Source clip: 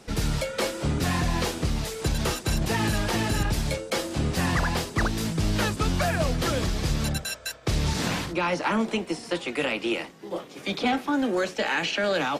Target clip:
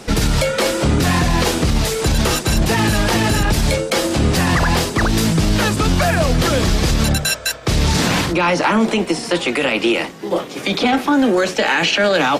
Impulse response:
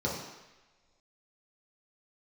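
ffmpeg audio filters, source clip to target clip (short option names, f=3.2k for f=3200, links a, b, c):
-af "bandreject=f=50:t=h:w=6,bandreject=f=100:t=h:w=6,bandreject=f=150:t=h:w=6,alimiter=level_in=20dB:limit=-1dB:release=50:level=0:latency=1,volume=-6dB"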